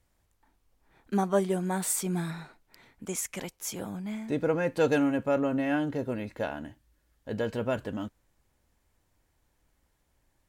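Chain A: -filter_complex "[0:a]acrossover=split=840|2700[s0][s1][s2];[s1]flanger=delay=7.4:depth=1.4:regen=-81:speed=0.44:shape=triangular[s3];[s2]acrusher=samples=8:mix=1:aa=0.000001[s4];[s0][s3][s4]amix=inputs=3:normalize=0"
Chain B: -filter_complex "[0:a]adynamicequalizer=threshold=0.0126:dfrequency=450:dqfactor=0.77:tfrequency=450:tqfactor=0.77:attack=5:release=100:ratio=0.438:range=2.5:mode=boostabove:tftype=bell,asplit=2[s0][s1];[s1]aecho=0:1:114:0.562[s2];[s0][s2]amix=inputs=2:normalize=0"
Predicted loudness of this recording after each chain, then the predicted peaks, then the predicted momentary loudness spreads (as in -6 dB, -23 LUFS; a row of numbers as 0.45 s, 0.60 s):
-30.5 LUFS, -26.0 LUFS; -14.5 dBFS, -8.0 dBFS; 12 LU, 14 LU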